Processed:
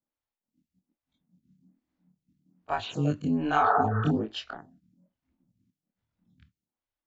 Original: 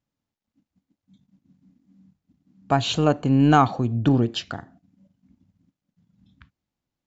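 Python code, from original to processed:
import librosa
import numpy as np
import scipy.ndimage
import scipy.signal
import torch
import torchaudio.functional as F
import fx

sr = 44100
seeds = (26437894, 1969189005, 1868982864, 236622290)

y = fx.frame_reverse(x, sr, frame_ms=54.0)
y = fx.spec_repair(y, sr, seeds[0], start_s=3.62, length_s=0.46, low_hz=360.0, high_hz=2000.0, source='before')
y = fx.stagger_phaser(y, sr, hz=1.2)
y = F.gain(torch.from_numpy(y), -2.0).numpy()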